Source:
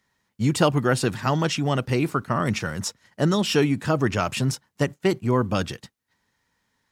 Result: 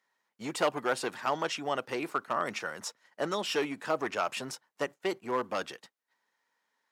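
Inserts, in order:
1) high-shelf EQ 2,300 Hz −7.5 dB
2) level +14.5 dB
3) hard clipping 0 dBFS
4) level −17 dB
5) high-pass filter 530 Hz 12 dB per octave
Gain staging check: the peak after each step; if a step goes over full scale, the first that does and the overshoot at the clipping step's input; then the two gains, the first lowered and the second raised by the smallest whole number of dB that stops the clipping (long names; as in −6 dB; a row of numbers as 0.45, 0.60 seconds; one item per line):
−8.0, +6.5, 0.0, −17.0, −13.5 dBFS
step 2, 6.5 dB
step 2 +7.5 dB, step 4 −10 dB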